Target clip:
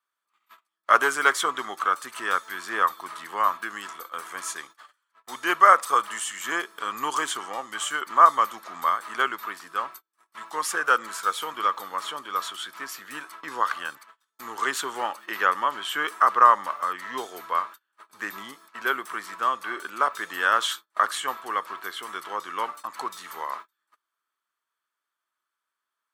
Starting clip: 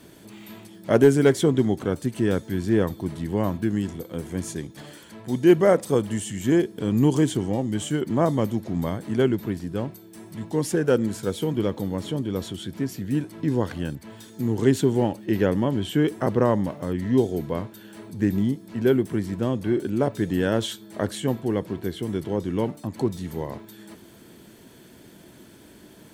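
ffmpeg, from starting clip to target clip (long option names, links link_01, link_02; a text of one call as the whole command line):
ffmpeg -i in.wav -af "agate=range=-37dB:threshold=-38dB:ratio=16:detection=peak,highpass=frequency=1200:width_type=q:width=8.9,volume=3dB" out.wav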